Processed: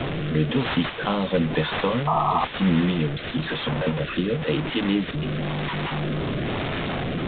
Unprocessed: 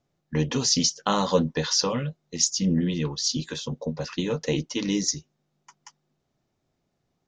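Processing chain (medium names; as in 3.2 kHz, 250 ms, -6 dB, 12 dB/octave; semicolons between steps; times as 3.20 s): one-bit delta coder 32 kbps, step -24 dBFS; in parallel at -4.5 dB: integer overflow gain 12 dB; on the sum: rotary cabinet horn 1 Hz; painted sound noise, 2.07–2.45 s, 630–1300 Hz -21 dBFS; resampled via 8 kHz; three bands compressed up and down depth 40%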